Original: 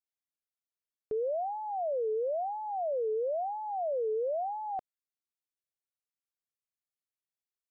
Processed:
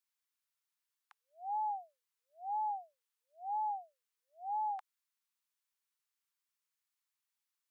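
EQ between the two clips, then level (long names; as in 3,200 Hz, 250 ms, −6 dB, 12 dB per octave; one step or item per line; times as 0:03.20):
Butterworth high-pass 850 Hz 96 dB per octave
+5.5 dB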